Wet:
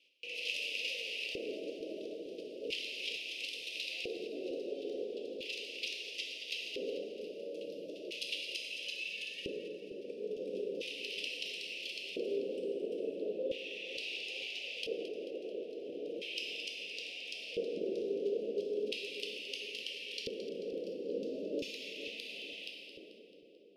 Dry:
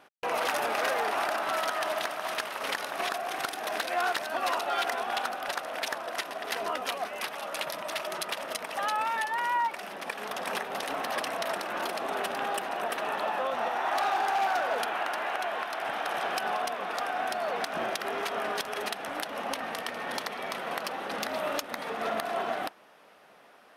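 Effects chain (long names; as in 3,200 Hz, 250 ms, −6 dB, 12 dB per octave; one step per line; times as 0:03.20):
0:09.07–0:09.55: low-shelf EQ 380 Hz +11.5 dB
convolution reverb RT60 1.7 s, pre-delay 5 ms, DRR −1 dB
auto-filter band-pass square 0.37 Hz 410–2,200 Hz
Chebyshev band-stop filter 510–2,700 Hz, order 4
parametric band 4,900 Hz +5.5 dB 0.36 octaves
echo with a time of its own for lows and highs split 900 Hz, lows 454 ms, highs 219 ms, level −12.5 dB
level +3.5 dB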